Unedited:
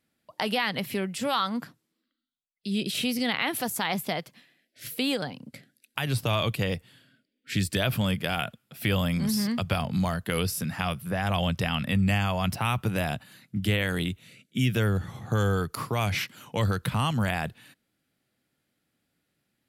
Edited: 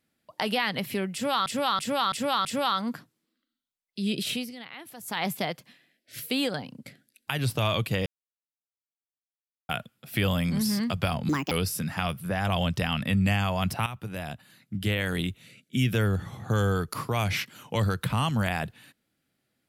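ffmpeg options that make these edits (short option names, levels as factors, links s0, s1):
-filter_complex "[0:a]asplit=12[s0][s1][s2][s3][s4][s5][s6][s7][s8][s9][s10][s11];[s0]atrim=end=1.462[s12];[s1]atrim=start=1.128:end=1.462[s13];[s2]atrim=start=1.128:end=1.462[s14];[s3]atrim=start=1.128:end=1.462[s15];[s4]atrim=start=1.128:end=3.21,asetpts=PTS-STARTPTS,afade=t=out:st=1.822:d=0.26:silence=0.16788[s16];[s5]atrim=start=3.21:end=3.66,asetpts=PTS-STARTPTS,volume=0.168[s17];[s6]atrim=start=3.66:end=6.74,asetpts=PTS-STARTPTS,afade=t=in:d=0.26:silence=0.16788,afade=t=out:st=3.076:d=0.004:c=hsin[s18];[s7]atrim=start=6.74:end=8.37,asetpts=PTS-STARTPTS,volume=0[s19];[s8]atrim=start=8.37:end=9.974,asetpts=PTS-STARTPTS,afade=t=in:d=0.004:c=hsin[s20];[s9]atrim=start=9.97:end=10.33,asetpts=PTS-STARTPTS,asetrate=71442,aresample=44100[s21];[s10]atrim=start=10.326:end=12.68,asetpts=PTS-STARTPTS,afade=t=out:st=2.35:d=0.004:c=hsin:silence=0.251189[s22];[s11]atrim=start=12.68,asetpts=PTS-STARTPTS,afade=t=in:d=1.4:silence=0.251189[s23];[s12][s13]acrossfade=d=0.004:c1=hsin:c2=hsin[s24];[s24][s14]acrossfade=d=0.004:c1=hsin:c2=hsin[s25];[s25][s15]acrossfade=d=0.004:c1=hsin:c2=hsin[s26];[s16][s17][s18][s19][s20]concat=n=5:v=0:a=1[s27];[s26][s27]acrossfade=d=0.004:c1=hsin:c2=hsin[s28];[s28][s21]acrossfade=d=0.004:c1=hsin:c2=hsin[s29];[s22][s23]concat=n=2:v=0:a=1[s30];[s29][s30]acrossfade=d=0.004:c1=hsin:c2=hsin"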